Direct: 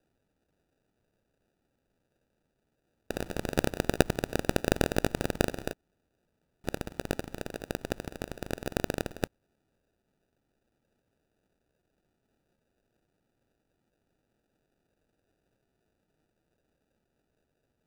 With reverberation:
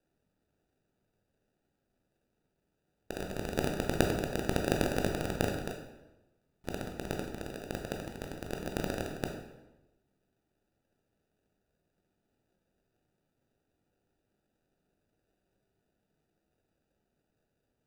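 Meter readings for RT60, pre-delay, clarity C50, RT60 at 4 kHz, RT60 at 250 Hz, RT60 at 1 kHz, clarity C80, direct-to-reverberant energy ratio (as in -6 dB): 1.0 s, 15 ms, 5.0 dB, 0.80 s, 1.1 s, 1.0 s, 7.5 dB, 2.0 dB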